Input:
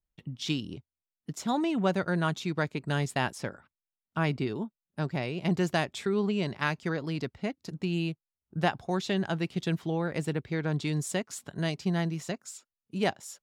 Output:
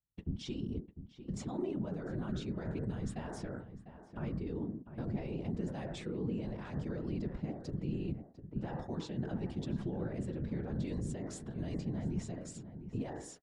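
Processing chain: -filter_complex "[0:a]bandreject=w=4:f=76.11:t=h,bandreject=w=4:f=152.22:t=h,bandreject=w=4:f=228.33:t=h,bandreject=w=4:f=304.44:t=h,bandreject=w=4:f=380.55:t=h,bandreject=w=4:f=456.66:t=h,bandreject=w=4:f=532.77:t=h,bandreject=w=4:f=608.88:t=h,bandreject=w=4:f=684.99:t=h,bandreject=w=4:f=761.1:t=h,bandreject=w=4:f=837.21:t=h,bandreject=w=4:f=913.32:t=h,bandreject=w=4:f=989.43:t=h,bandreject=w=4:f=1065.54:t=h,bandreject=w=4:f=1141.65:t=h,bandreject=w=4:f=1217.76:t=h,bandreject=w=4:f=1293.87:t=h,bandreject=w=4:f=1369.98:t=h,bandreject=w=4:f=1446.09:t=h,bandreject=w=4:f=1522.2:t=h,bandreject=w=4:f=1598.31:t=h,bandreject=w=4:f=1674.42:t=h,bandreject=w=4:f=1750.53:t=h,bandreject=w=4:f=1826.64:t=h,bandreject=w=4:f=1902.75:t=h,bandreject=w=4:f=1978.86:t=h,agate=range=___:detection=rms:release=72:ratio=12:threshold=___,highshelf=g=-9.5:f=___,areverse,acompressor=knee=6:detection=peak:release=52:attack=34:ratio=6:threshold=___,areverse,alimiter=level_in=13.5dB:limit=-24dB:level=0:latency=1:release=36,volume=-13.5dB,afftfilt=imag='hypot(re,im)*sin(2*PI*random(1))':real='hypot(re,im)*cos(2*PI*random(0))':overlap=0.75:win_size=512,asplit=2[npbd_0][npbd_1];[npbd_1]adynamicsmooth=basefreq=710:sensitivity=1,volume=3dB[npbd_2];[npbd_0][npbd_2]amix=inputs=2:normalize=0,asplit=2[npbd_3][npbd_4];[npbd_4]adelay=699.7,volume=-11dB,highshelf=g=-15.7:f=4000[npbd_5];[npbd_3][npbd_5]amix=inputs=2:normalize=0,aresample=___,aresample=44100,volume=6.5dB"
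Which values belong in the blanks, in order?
-14dB, -54dB, 2400, -43dB, 22050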